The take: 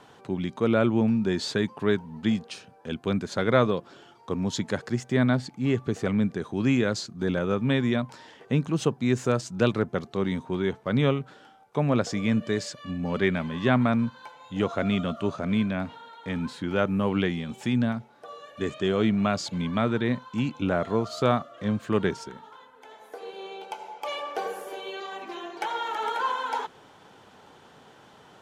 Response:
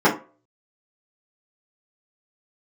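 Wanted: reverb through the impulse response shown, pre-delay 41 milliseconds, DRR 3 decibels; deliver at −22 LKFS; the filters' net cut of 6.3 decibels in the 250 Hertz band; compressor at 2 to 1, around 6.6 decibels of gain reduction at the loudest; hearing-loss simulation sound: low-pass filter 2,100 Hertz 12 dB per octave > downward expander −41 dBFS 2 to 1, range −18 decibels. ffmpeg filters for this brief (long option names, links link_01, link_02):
-filter_complex "[0:a]equalizer=frequency=250:width_type=o:gain=-8,acompressor=threshold=-29dB:ratio=2,asplit=2[link_01][link_02];[1:a]atrim=start_sample=2205,adelay=41[link_03];[link_02][link_03]afir=irnorm=-1:irlink=0,volume=-25dB[link_04];[link_01][link_04]amix=inputs=2:normalize=0,lowpass=2100,agate=range=-18dB:threshold=-41dB:ratio=2,volume=9dB"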